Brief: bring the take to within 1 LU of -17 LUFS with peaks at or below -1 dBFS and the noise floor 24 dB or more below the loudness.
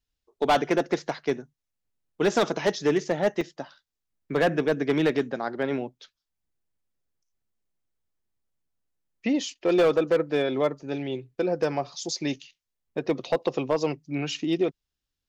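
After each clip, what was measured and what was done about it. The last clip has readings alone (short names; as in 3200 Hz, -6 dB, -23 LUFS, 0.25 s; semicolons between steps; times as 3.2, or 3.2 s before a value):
clipped 1.0%; flat tops at -15.5 dBFS; dropouts 1; longest dropout 3.6 ms; loudness -26.5 LUFS; peak -15.5 dBFS; loudness target -17.0 LUFS
-> clip repair -15.5 dBFS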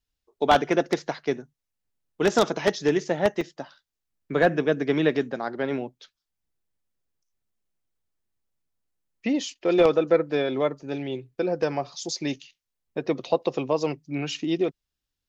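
clipped 0.0%; dropouts 1; longest dropout 3.6 ms
-> interpolate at 3.41, 3.6 ms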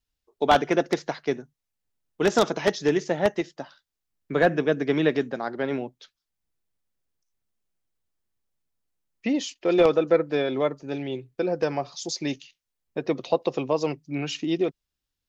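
dropouts 0; loudness -25.5 LUFS; peak -6.5 dBFS; loudness target -17.0 LUFS
-> gain +8.5 dB; limiter -1 dBFS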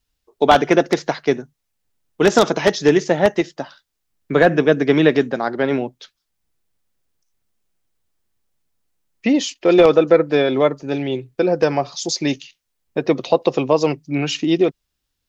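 loudness -17.5 LUFS; peak -1.0 dBFS; noise floor -76 dBFS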